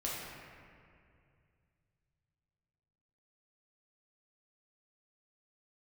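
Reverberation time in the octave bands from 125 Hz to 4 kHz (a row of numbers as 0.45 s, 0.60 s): 4.0 s, 2.7 s, 2.5 s, 2.2 s, 2.2 s, 1.5 s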